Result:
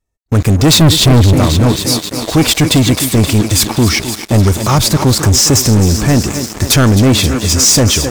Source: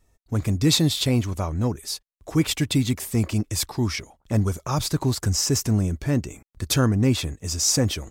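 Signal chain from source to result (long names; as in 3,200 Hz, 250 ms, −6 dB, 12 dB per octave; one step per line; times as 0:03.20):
0:00.81–0:01.34: low-shelf EQ 410 Hz +11.5 dB
feedback echo with a high-pass in the loop 262 ms, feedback 80%, high-pass 190 Hz, level −11.5 dB
leveller curve on the samples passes 5
level −2 dB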